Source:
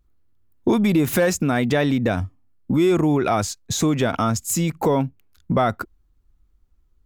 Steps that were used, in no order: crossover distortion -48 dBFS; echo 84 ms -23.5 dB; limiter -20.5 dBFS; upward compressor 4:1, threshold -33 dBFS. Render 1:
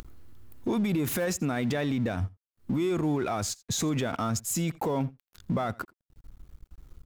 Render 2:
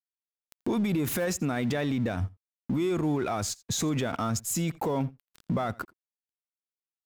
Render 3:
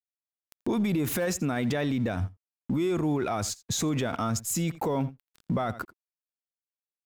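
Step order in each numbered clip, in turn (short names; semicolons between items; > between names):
limiter > upward compressor > crossover distortion > echo; limiter > crossover distortion > upward compressor > echo; crossover distortion > upward compressor > echo > limiter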